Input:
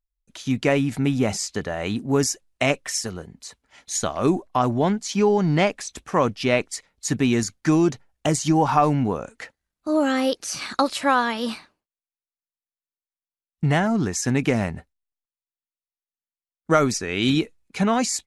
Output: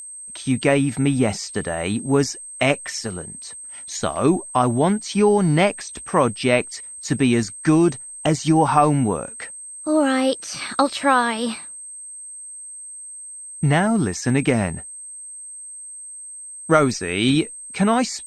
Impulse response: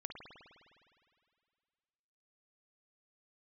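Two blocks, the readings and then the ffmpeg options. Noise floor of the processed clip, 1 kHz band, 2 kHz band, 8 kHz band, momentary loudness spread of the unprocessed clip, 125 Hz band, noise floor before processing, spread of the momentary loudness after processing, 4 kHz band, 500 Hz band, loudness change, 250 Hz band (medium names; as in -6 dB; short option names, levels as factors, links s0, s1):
-37 dBFS, +2.5 dB, +2.5 dB, +2.5 dB, 12 LU, +2.5 dB, under -85 dBFS, 16 LU, +1.5 dB, +2.5 dB, +2.5 dB, +2.5 dB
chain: -filter_complex "[0:a]aeval=exprs='val(0)+0.0316*sin(2*PI*8300*n/s)':c=same,acrossover=split=5800[s0][s1];[s1]acompressor=threshold=0.00708:ratio=4:attack=1:release=60[s2];[s0][s2]amix=inputs=2:normalize=0,volume=1.33" -ar 48000 -c:a libopus -b:a 96k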